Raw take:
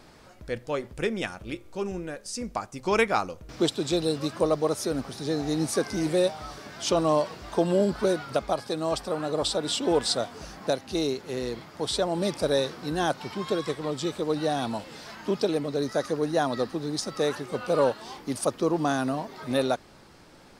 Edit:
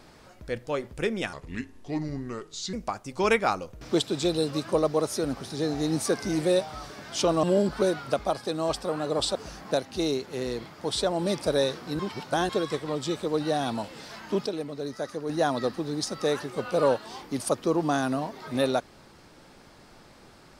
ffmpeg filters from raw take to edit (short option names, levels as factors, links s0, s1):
-filter_complex "[0:a]asplit=9[s0][s1][s2][s3][s4][s5][s6][s7][s8];[s0]atrim=end=1.334[s9];[s1]atrim=start=1.33:end=2.41,asetpts=PTS-STARTPTS,asetrate=33957,aresample=44100[s10];[s2]atrim=start=2.406:end=7.112[s11];[s3]atrim=start=7.658:end=9.582[s12];[s4]atrim=start=10.308:end=12.952[s13];[s5]atrim=start=12.948:end=13.452,asetpts=PTS-STARTPTS,areverse[s14];[s6]atrim=start=13.448:end=15.422[s15];[s7]atrim=start=15.418:end=16.252,asetpts=PTS-STARTPTS,volume=0.501[s16];[s8]atrim=start=16.248[s17];[s9][s10]acrossfade=d=0.004:c1=hsin:c2=hsin[s18];[s18][s11]acrossfade=d=0.004:c1=hsin:c2=hsin[s19];[s19][s12]acrossfade=d=0.004:c1=hsin:c2=hsin[s20];[s20][s13]acrossfade=d=0.004:c1=hsin:c2=hsin[s21];[s21][s14]acrossfade=d=0.004:c1=hsin:c2=hsin[s22];[s22][s15]acrossfade=d=0.004:c1=hsin:c2=hsin[s23];[s23][s16]acrossfade=d=0.004:c1=hsin:c2=hsin[s24];[s24][s17]acrossfade=d=0.004:c1=hsin:c2=hsin"